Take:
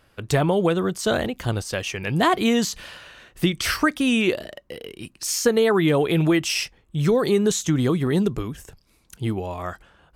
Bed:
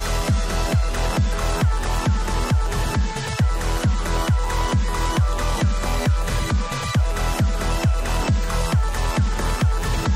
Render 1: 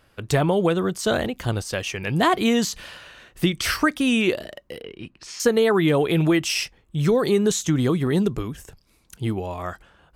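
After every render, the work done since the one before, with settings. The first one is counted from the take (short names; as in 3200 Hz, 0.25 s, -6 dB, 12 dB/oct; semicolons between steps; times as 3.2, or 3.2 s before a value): 4.81–5.4 LPF 3100 Hz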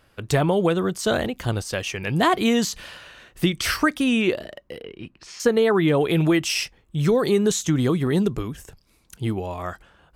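4.04–6.01 high shelf 4600 Hz -6.5 dB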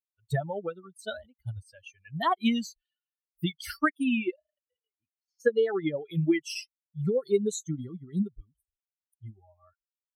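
per-bin expansion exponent 3; upward expander 1.5:1, over -38 dBFS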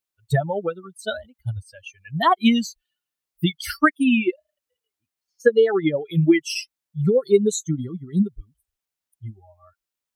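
gain +8.5 dB; limiter -3 dBFS, peak gain reduction 1 dB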